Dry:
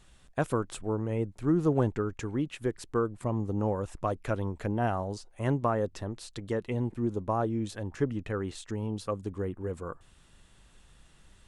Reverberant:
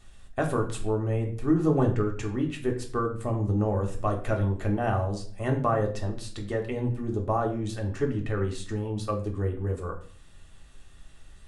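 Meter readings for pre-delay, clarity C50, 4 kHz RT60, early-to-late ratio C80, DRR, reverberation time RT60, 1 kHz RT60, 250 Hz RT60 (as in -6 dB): 3 ms, 10.0 dB, 0.40 s, 13.5 dB, 1.0 dB, 0.45 s, 0.45 s, 0.70 s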